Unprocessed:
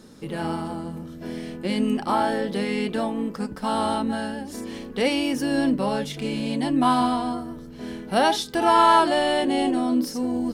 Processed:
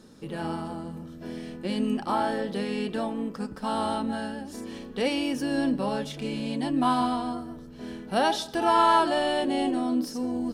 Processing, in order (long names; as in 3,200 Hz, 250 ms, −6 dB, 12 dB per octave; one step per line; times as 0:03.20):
high-shelf EQ 12,000 Hz −5.5 dB
notch filter 2,100 Hz, Q 14
convolution reverb RT60 0.50 s, pre-delay 90 ms, DRR 20 dB
level −4 dB